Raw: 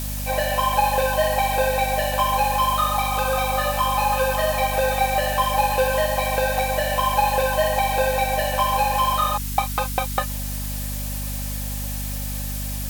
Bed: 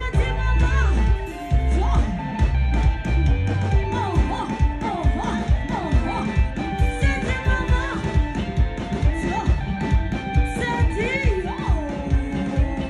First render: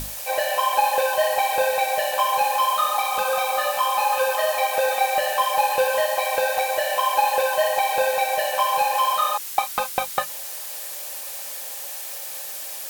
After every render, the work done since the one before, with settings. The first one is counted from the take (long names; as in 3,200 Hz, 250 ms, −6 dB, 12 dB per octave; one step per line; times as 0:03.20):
mains-hum notches 50/100/150/200/250 Hz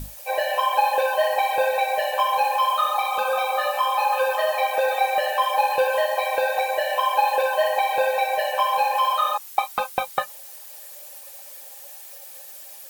broadband denoise 11 dB, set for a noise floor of −33 dBFS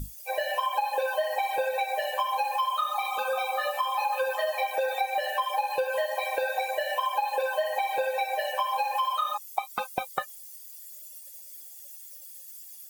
spectral dynamics exaggerated over time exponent 1.5
downward compressor, threshold −24 dBFS, peak gain reduction 8.5 dB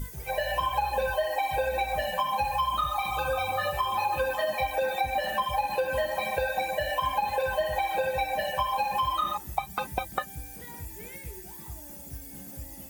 mix in bed −22.5 dB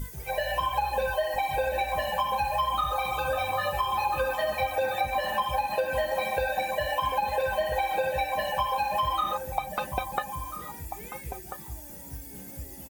slap from a distant wall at 230 metres, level −8 dB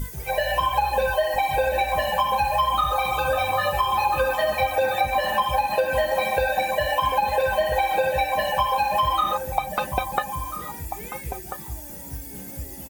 level +5.5 dB